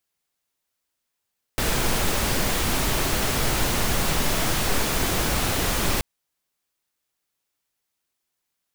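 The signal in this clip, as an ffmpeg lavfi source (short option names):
-f lavfi -i "anoisesrc=c=pink:a=0.385:d=4.43:r=44100:seed=1"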